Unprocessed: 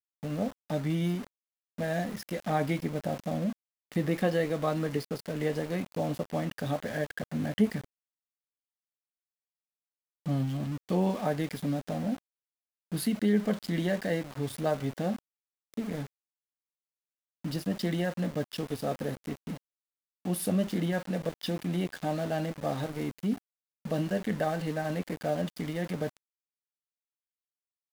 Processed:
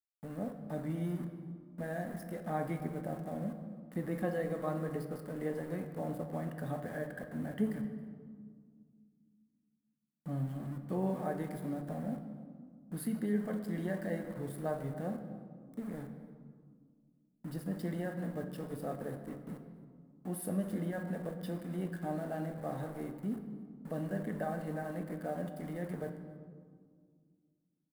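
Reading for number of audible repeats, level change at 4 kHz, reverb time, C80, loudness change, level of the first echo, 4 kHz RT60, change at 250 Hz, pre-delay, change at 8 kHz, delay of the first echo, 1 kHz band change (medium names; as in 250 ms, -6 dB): 1, -17.5 dB, 1.9 s, 9.0 dB, -7.0 dB, -22.0 dB, 1.1 s, -6.5 dB, 3 ms, -9.0 dB, 272 ms, -6.5 dB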